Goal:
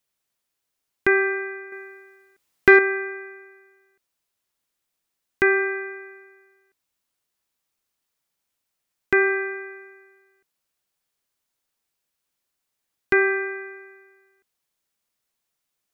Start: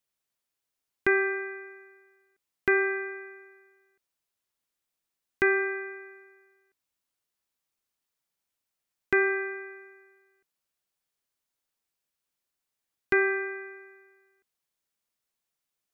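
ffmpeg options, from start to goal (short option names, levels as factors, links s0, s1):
-filter_complex "[0:a]asettb=1/sr,asplit=3[s0][s1][s2];[s0]atrim=end=1.724[s3];[s1]atrim=start=1.72:end=2.79,asetpts=PTS-STARTPTS,afade=t=in:d=0.004:c=qsin,afade=t=out:st=1.066:d=0.004:c=qsin,acontrast=71[s4];[s2]atrim=start=2.786[s5];[s3][s4]acrossfade=d=0.004:c1=hsin:c2=qsin[s6];[s6][s5]acrossfade=d=0.004:c1=qsin:c2=hsin,volume=1.78"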